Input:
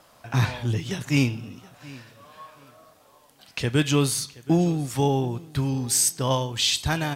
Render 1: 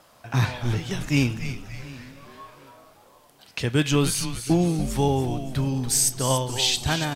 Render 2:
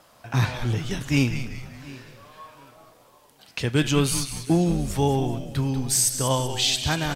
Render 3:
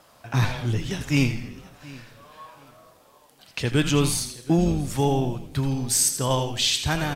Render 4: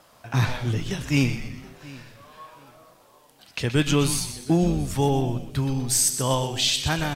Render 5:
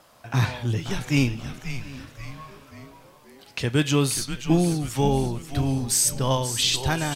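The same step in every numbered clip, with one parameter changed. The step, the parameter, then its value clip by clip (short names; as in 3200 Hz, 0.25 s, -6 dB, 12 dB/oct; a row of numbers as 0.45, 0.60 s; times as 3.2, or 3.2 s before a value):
frequency-shifting echo, time: 286, 191, 82, 124, 534 ms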